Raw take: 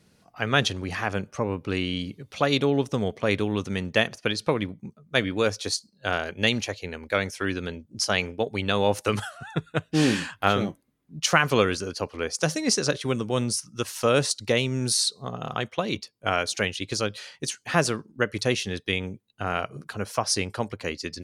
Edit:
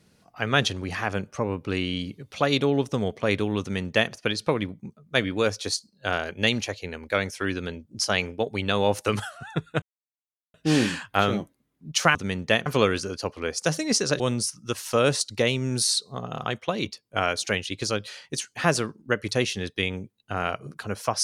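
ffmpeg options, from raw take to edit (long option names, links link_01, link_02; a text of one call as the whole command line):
ffmpeg -i in.wav -filter_complex "[0:a]asplit=5[link_01][link_02][link_03][link_04][link_05];[link_01]atrim=end=9.82,asetpts=PTS-STARTPTS,afade=type=out:start_time=9.816:duration=0.004:curve=hsin,apad=pad_dur=0.72[link_06];[link_02]atrim=start=9.82:end=11.432,asetpts=PTS-STARTPTS,afade=type=in:duration=0.004:curve=hsin[link_07];[link_03]atrim=start=3.608:end=4.122[link_08];[link_04]atrim=start=11.428:end=12.972[link_09];[link_05]atrim=start=13.298[link_10];[link_06][link_07]concat=n=2:v=0:a=1[link_11];[link_11][link_08]acrossfade=duration=0.004:curve1=hsin:curve2=hsin[link_12];[link_12][link_09]acrossfade=duration=0.004:curve1=hsin:curve2=hsin[link_13];[link_13][link_10]acrossfade=duration=0.004:curve1=hsin:curve2=hsin" out.wav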